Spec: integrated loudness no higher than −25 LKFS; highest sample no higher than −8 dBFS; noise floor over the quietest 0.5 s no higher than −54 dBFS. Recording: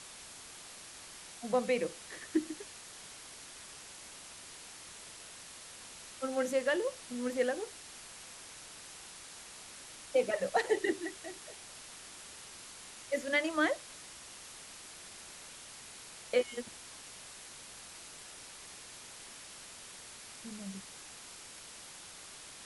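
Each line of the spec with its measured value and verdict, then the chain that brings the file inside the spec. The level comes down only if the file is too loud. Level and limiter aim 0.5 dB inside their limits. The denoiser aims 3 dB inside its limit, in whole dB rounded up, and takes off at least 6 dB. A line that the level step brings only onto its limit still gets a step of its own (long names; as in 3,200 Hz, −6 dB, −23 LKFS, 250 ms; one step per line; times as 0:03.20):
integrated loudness −39.0 LKFS: in spec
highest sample −18.0 dBFS: in spec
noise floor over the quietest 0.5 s −50 dBFS: out of spec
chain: broadband denoise 7 dB, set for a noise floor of −50 dBFS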